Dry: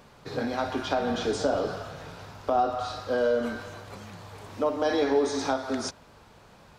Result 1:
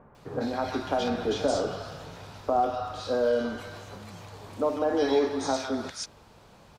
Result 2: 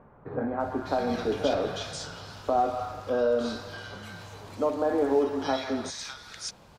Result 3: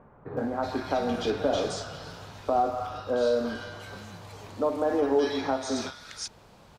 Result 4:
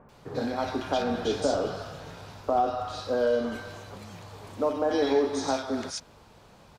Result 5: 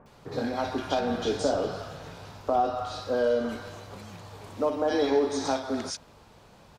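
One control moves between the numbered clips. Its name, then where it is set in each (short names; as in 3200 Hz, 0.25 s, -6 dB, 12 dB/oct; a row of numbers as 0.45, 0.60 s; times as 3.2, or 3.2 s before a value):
bands offset in time, time: 150, 600, 370, 90, 60 ms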